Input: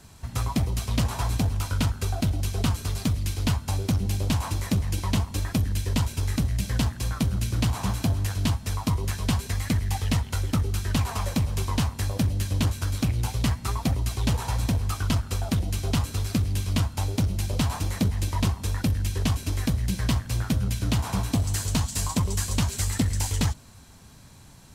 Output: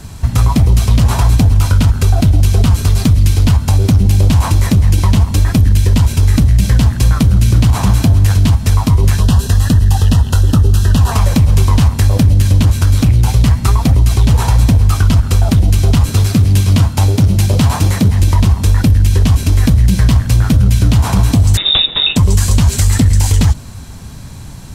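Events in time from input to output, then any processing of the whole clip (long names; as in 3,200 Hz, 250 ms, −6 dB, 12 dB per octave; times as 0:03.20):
0:09.20–0:11.12: Butterworth band-reject 2,200 Hz, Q 3.1
0:16.09–0:18.21: high-pass filter 92 Hz
0:21.57–0:22.16: voice inversion scrambler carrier 3,700 Hz
whole clip: low-shelf EQ 210 Hz +8.5 dB; boost into a limiter +15 dB; level −1 dB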